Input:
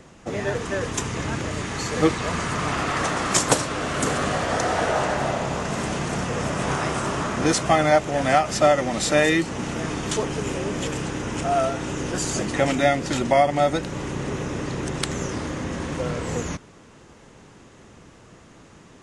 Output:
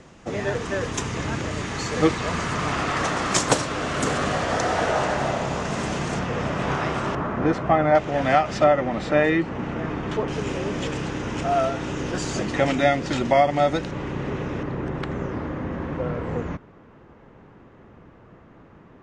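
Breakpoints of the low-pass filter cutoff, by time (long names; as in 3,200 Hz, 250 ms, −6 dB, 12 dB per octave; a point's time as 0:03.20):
7,300 Hz
from 0:06.19 3,900 Hz
from 0:07.15 1,600 Hz
from 0:07.95 3,600 Hz
from 0:08.64 2,100 Hz
from 0:10.28 5,100 Hz
from 0:13.91 3,000 Hz
from 0:14.63 1,700 Hz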